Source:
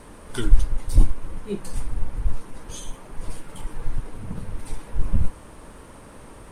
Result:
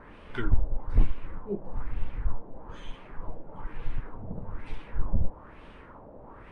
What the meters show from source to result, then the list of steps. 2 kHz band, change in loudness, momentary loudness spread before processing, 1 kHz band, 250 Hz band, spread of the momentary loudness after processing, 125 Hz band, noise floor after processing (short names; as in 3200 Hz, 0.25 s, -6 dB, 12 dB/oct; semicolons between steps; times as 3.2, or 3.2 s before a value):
-1.5 dB, -6.0 dB, 21 LU, -2.0 dB, -5.0 dB, 18 LU, -5.5 dB, -49 dBFS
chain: LFO low-pass sine 1.1 Hz 640–3000 Hz; wavefolder -5 dBFS; gain -5.5 dB